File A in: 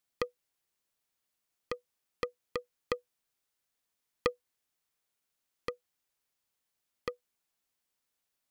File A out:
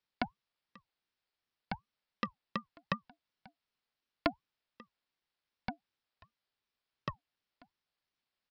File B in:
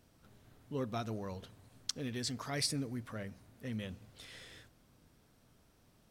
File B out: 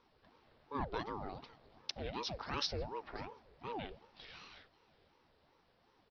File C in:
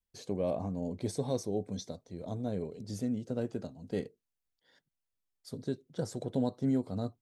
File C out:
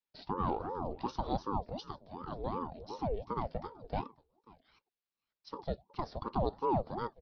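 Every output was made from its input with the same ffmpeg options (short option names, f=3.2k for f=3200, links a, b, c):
-filter_complex "[0:a]highpass=f=170:w=0.5412,highpass=f=170:w=1.3066,asplit=2[a][b];[b]aecho=0:1:539:0.0668[c];[a][c]amix=inputs=2:normalize=0,aresample=11025,aresample=44100,aeval=exprs='val(0)*sin(2*PI*450*n/s+450*0.6/2.7*sin(2*PI*2.7*n/s))':c=same,volume=2dB"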